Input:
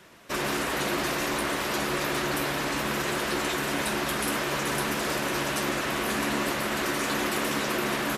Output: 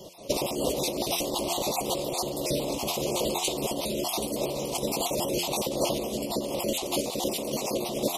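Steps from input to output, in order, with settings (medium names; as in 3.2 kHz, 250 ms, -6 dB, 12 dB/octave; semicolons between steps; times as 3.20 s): random holes in the spectrogram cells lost 28%; de-hum 87.56 Hz, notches 14; compressor with a negative ratio -33 dBFS, ratio -0.5; Butterworth band-stop 1.6 kHz, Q 0.66; peaking EQ 540 Hz +7.5 dB 0.54 oct; trim +6 dB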